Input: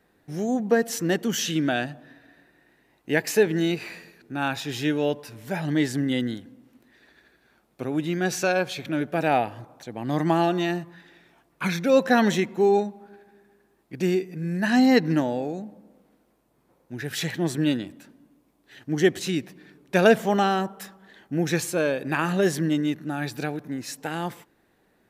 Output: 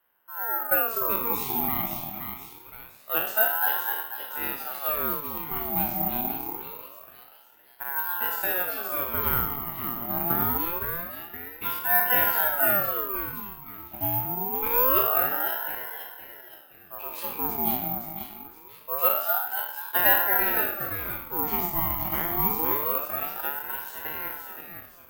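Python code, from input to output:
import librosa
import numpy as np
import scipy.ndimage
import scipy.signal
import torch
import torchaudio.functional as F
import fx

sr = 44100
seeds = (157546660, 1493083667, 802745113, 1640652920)

p1 = fx.spec_trails(x, sr, decay_s=0.67)
p2 = fx.lowpass(p1, sr, hz=2000.0, slope=6)
p3 = p2 + fx.echo_split(p2, sr, split_hz=590.0, low_ms=245, high_ms=518, feedback_pct=52, wet_db=-5.5, dry=0)
p4 = (np.kron(p3[::3], np.eye(3)[0]) * 3)[:len(p3)]
p5 = np.sign(p4) * np.maximum(np.abs(p4) - 10.0 ** (-28.5 / 20.0), 0.0)
p6 = p4 + (p5 * 10.0 ** (-9.5 / 20.0))
p7 = fx.ring_lfo(p6, sr, carrier_hz=860.0, swing_pct=45, hz=0.25)
y = p7 * 10.0 ** (-8.5 / 20.0)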